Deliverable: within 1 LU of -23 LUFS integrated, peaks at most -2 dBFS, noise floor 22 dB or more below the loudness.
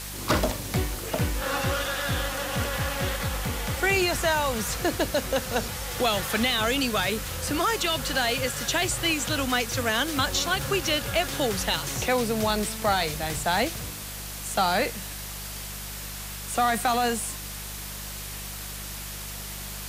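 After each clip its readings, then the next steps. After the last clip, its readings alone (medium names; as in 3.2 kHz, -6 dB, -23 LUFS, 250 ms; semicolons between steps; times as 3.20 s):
hum 50 Hz; highest harmonic 200 Hz; hum level -38 dBFS; noise floor -37 dBFS; noise floor target -49 dBFS; loudness -26.5 LUFS; peak level -9.0 dBFS; loudness target -23.0 LUFS
-> de-hum 50 Hz, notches 4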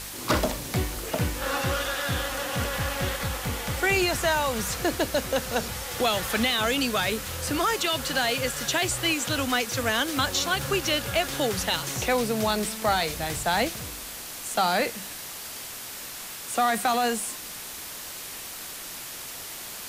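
hum not found; noise floor -38 dBFS; noise floor target -49 dBFS
-> noise print and reduce 11 dB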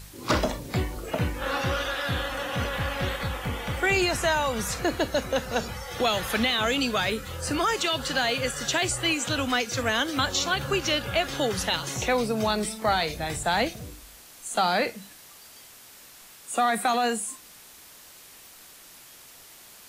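noise floor -49 dBFS; loudness -26.5 LUFS; peak level -10.0 dBFS; loudness target -23.0 LUFS
-> trim +3.5 dB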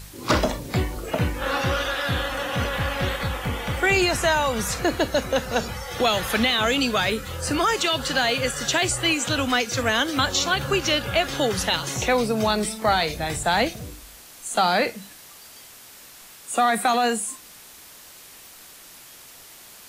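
loudness -23.0 LUFS; peak level -6.5 dBFS; noise floor -46 dBFS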